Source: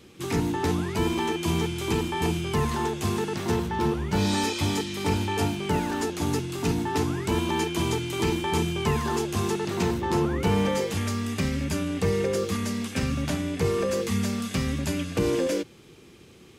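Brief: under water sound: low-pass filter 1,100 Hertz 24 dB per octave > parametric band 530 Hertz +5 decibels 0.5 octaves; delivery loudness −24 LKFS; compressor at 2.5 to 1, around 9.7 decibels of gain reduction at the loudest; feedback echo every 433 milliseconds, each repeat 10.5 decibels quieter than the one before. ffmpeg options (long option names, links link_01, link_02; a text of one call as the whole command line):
ffmpeg -i in.wav -af "acompressor=threshold=-35dB:ratio=2.5,lowpass=frequency=1100:width=0.5412,lowpass=frequency=1100:width=1.3066,equalizer=frequency=530:width_type=o:width=0.5:gain=5,aecho=1:1:433|866|1299:0.299|0.0896|0.0269,volume=10.5dB" out.wav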